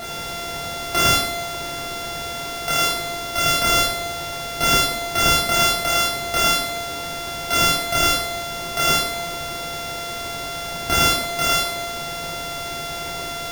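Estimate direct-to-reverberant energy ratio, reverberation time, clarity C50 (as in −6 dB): −6.5 dB, 0.75 s, 2.5 dB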